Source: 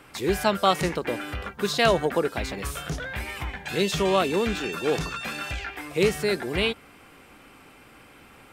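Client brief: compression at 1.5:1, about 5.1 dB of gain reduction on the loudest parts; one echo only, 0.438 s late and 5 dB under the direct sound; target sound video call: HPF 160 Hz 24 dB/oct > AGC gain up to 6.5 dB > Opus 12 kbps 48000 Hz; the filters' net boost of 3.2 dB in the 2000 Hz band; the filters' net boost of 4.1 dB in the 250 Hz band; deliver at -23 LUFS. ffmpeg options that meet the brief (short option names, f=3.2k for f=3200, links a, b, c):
-af "equalizer=f=250:t=o:g=6.5,equalizer=f=2k:t=o:g=4,acompressor=threshold=-27dB:ratio=1.5,highpass=f=160:w=0.5412,highpass=f=160:w=1.3066,aecho=1:1:438:0.562,dynaudnorm=m=6.5dB,volume=4.5dB" -ar 48000 -c:a libopus -b:a 12k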